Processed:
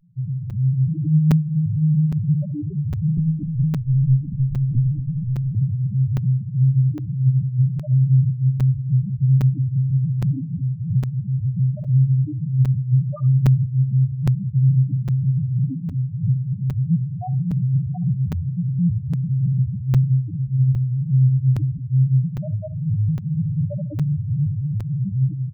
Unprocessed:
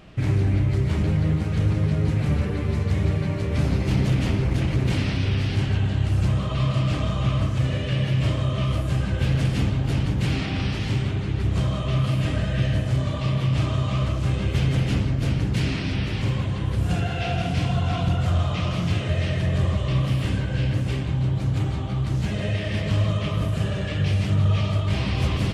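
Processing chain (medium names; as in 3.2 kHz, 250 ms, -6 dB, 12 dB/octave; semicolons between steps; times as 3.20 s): reverb removal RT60 0.72 s; hum notches 50/100/150 Hz; dynamic bell 160 Hz, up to +5 dB, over -39 dBFS, Q 4.4; comb 6.8 ms, depth 65%; level rider gain up to 11.5 dB; loudest bins only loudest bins 1; flutter echo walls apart 11.6 m, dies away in 0.2 s; 3.17–5.55 s: LPC vocoder at 8 kHz pitch kept; crackling interface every 0.81 s, samples 256, zero, from 0.50 s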